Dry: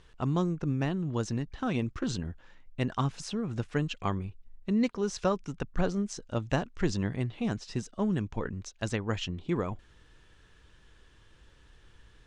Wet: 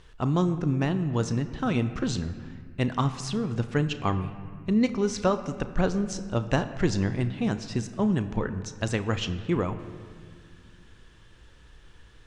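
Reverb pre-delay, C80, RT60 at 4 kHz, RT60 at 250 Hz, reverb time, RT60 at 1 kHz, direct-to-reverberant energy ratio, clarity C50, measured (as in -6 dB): 32 ms, 13.0 dB, 1.4 s, 3.0 s, 2.0 s, 1.9 s, 10.0 dB, 12.0 dB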